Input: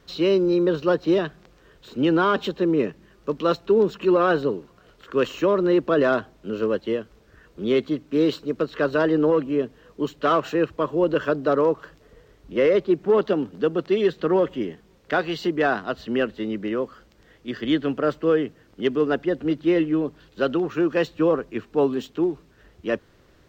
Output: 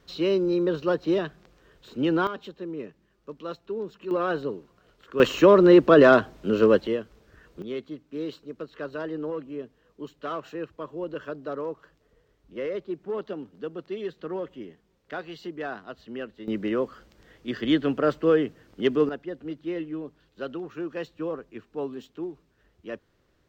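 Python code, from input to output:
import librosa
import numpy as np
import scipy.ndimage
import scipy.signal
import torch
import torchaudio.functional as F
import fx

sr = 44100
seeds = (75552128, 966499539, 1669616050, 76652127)

y = fx.gain(x, sr, db=fx.steps((0.0, -4.0), (2.27, -14.0), (4.11, -7.0), (5.2, 5.0), (6.87, -2.0), (7.62, -12.5), (16.48, -0.5), (19.09, -11.5)))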